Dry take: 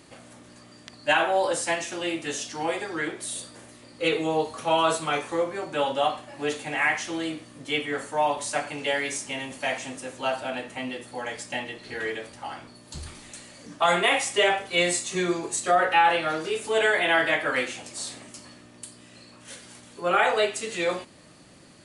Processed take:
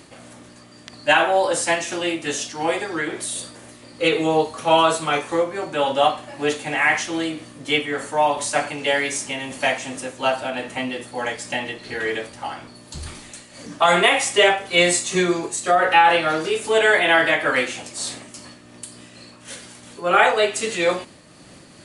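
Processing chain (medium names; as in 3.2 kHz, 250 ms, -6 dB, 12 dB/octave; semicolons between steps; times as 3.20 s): random flutter of the level, depth 65%; trim +8.5 dB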